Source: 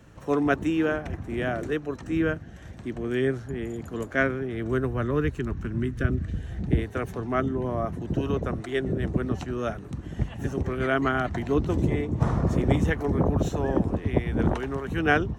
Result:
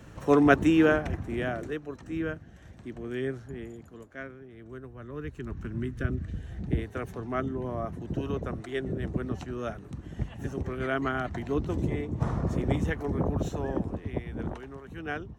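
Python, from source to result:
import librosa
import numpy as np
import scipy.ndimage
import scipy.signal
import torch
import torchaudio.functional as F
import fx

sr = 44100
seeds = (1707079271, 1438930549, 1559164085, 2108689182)

y = fx.gain(x, sr, db=fx.line((0.92, 3.5), (1.8, -7.0), (3.59, -7.0), (4.09, -17.0), (4.98, -17.0), (5.59, -5.0), (13.57, -5.0), (14.8, -13.0)))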